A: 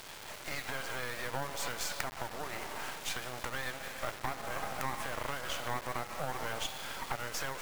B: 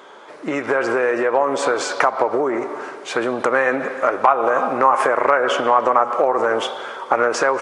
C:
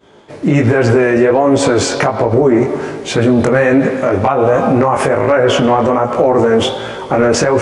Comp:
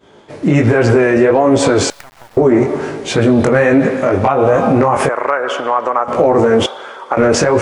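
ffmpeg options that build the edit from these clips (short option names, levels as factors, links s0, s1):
-filter_complex "[1:a]asplit=2[s0][s1];[2:a]asplit=4[s2][s3][s4][s5];[s2]atrim=end=1.902[s6];[0:a]atrim=start=1.898:end=2.372[s7];[s3]atrim=start=2.368:end=5.092[s8];[s0]atrim=start=5.088:end=6.082[s9];[s4]atrim=start=6.078:end=6.662[s10];[s1]atrim=start=6.658:end=7.172[s11];[s5]atrim=start=7.168[s12];[s6][s7]acrossfade=d=0.004:c1=hsin:c2=hsin[s13];[s13][s8]acrossfade=d=0.004:c1=hsin:c2=hsin[s14];[s14][s9]acrossfade=d=0.004:c1=hsin:c2=hsin[s15];[s15][s10]acrossfade=d=0.004:c1=hsin:c2=hsin[s16];[s16][s11]acrossfade=d=0.004:c1=hsin:c2=hsin[s17];[s17][s12]acrossfade=d=0.004:c1=hsin:c2=hsin"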